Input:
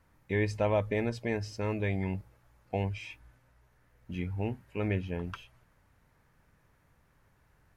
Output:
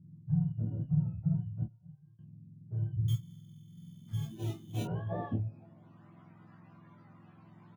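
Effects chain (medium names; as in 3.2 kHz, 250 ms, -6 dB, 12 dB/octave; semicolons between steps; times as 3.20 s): spectrum inverted on a logarithmic axis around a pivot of 550 Hz; 1.63–2.19 s: gate -25 dBFS, range -34 dB; peaking EQ 480 Hz -11 dB 0.72 oct; in parallel at +1 dB: compression, threshold -43 dBFS, peak gain reduction 16 dB; on the sum: peak limiter -25.5 dBFS, peak gain reduction 8.5 dB; Chebyshev shaper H 5 -18 dB, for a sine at -25 dBFS; low-pass sweep 150 Hz -> 1.1 kHz, 3.66–6.15 s; 3.08–4.83 s: sample-rate reducer 3.3 kHz, jitter 0%; doubling 18 ms -5 dB; early reflections 12 ms -5.5 dB, 27 ms -4.5 dB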